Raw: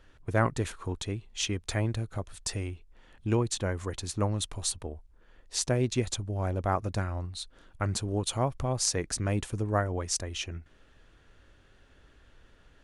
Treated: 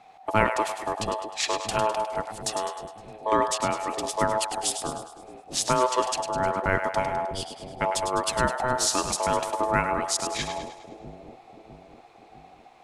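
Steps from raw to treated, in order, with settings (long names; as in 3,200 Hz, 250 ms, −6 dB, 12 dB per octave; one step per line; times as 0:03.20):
ring modulation 760 Hz
echo with a time of its own for lows and highs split 520 Hz, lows 653 ms, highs 103 ms, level −8 dB
level +6.5 dB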